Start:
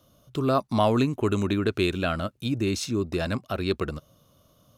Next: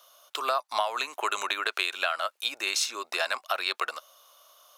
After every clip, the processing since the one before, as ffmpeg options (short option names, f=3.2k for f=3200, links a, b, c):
-af "highpass=f=750:w=0.5412,highpass=f=750:w=1.3066,acompressor=threshold=-32dB:ratio=12,volume=9dB"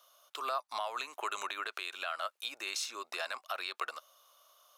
-af "equalizer=f=1.2k:t=o:w=0.23:g=2.5,alimiter=limit=-16.5dB:level=0:latency=1:release=61,volume=-7.5dB"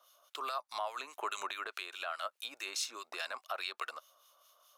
-filter_complex "[0:a]acrossover=split=1500[a][b];[a]aeval=exprs='val(0)*(1-0.7/2+0.7/2*cos(2*PI*4.8*n/s))':c=same[c];[b]aeval=exprs='val(0)*(1-0.7/2-0.7/2*cos(2*PI*4.8*n/s))':c=same[d];[c][d]amix=inputs=2:normalize=0,volume=1.5dB"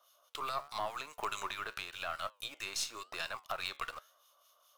-filter_complex "[0:a]flanger=delay=8.6:depth=6.1:regen=83:speed=0.91:shape=sinusoidal,asplit=2[a][b];[b]acrusher=bits=6:dc=4:mix=0:aa=0.000001,volume=-5.5dB[c];[a][c]amix=inputs=2:normalize=0,volume=2.5dB"